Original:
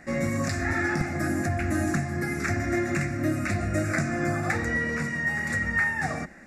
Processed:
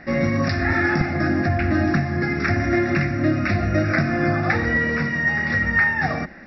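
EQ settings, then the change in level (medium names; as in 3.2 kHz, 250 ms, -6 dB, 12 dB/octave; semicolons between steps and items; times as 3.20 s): brick-wall FIR low-pass 5.7 kHz; +6.5 dB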